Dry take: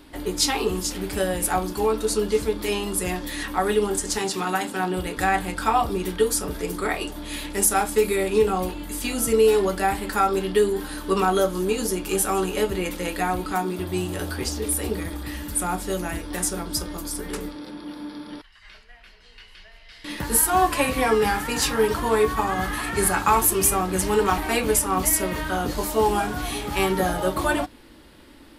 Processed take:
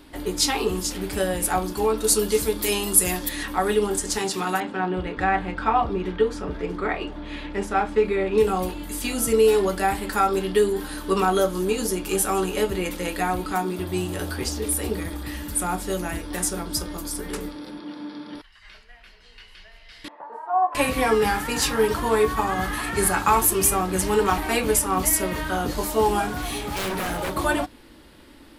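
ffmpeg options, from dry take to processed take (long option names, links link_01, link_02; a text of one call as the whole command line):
ffmpeg -i in.wav -filter_complex "[0:a]asettb=1/sr,asplit=3[link_01][link_02][link_03];[link_01]atrim=end=2.044[link_04];[link_02]atrim=start=2.04:end=3.29,asetpts=PTS-STARTPTS,afade=type=in:duration=0.004:curve=qsin,afade=type=out:start_time=1.246:duration=0.004:curve=qsin,aemphasis=mode=production:type=50kf[link_05];[link_03]atrim=start=3.286[link_06];[link_04][link_05]acrossfade=duration=0.004:curve1=hsin:curve2=qsin[link_07];[link_07][link_06]acrossfade=duration=0.004:curve1=qsin:curve2=hsin,asettb=1/sr,asplit=3[link_08][link_09][link_10];[link_08]atrim=end=4.604[link_11];[link_09]atrim=start=4.6:end=8.38,asetpts=PTS-STARTPTS,afade=type=in:duration=0.004:curve=qsin,afade=type=out:start_time=3.776:duration=0.004:curve=qsin,lowpass=2600[link_12];[link_10]atrim=start=8.376[link_13];[link_11][link_12]acrossfade=duration=0.004:curve1=hsin:curve2=qsin[link_14];[link_14][link_13]acrossfade=duration=0.004:curve1=qsin:curve2=hsin,asettb=1/sr,asplit=3[link_15][link_16][link_17];[link_15]atrim=end=17.794[link_18];[link_16]atrim=start=17.79:end=18.35,asetpts=PTS-STARTPTS,afade=type=in:duration=0.004:curve=qsin,afade=type=out:start_time=0.556:duration=0.004:curve=qsin,highpass=110,lowpass=6200[link_19];[link_17]atrim=start=18.346[link_20];[link_18][link_19]acrossfade=duration=0.004:curve1=hsin:curve2=qsin[link_21];[link_21][link_20]acrossfade=duration=0.004:curve1=qsin:curve2=hsin,asettb=1/sr,asplit=3[link_22][link_23][link_24];[link_22]atrim=end=20.084[link_25];[link_23]atrim=start=20.08:end=20.75,asetpts=PTS-STARTPTS,afade=type=in:duration=0.004:curve=qsin,afade=type=out:start_time=0.666:duration=0.004:curve=qsin,asuperpass=centerf=790:order=4:qfactor=1.7[link_26];[link_24]atrim=start=20.746[link_27];[link_25][link_26]acrossfade=duration=0.004:curve1=hsin:curve2=qsin[link_28];[link_28][link_27]acrossfade=duration=0.004:curve1=qsin:curve2=hsin,asettb=1/sr,asplit=3[link_29][link_30][link_31];[link_29]atrim=end=26.294[link_32];[link_30]atrim=start=26.29:end=27.36,asetpts=PTS-STARTPTS,afade=type=in:duration=0.004:curve=qsin,afade=type=out:start_time=1.066:duration=0.004:curve=qsin,aeval=exprs='0.0794*(abs(mod(val(0)/0.0794+3,4)-2)-1)':channel_layout=same[link_33];[link_31]atrim=start=27.356[link_34];[link_32][link_33]acrossfade=duration=0.004:curve1=hsin:curve2=qsin[link_35];[link_35][link_34]acrossfade=duration=0.004:curve1=qsin:curve2=hsin" out.wav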